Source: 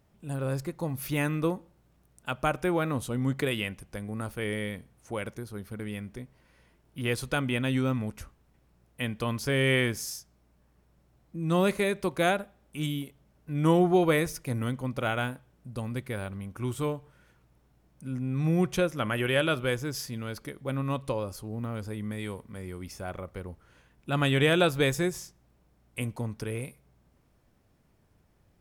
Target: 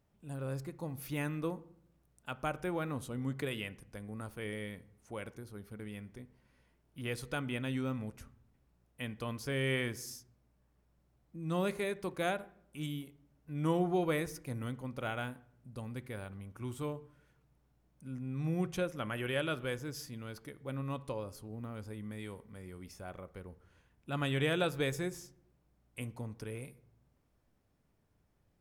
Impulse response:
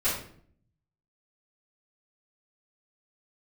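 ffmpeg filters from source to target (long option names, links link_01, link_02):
-filter_complex "[0:a]asplit=2[link_01][link_02];[link_02]lowpass=2400[link_03];[1:a]atrim=start_sample=2205,asetrate=35280,aresample=44100[link_04];[link_03][link_04]afir=irnorm=-1:irlink=0,volume=-26.5dB[link_05];[link_01][link_05]amix=inputs=2:normalize=0,volume=-9dB"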